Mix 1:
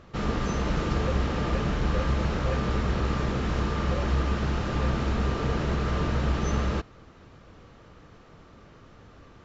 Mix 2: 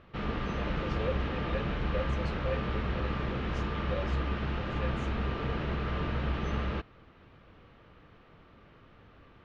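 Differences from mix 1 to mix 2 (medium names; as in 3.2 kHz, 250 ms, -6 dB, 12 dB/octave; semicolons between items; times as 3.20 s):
background: add four-pole ladder low-pass 3.8 kHz, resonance 25%; master: add treble shelf 3.9 kHz +5.5 dB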